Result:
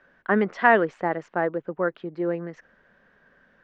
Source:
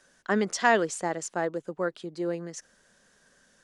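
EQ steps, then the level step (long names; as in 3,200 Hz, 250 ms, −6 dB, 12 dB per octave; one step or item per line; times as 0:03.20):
transistor ladder low-pass 2,700 Hz, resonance 20%
+9.0 dB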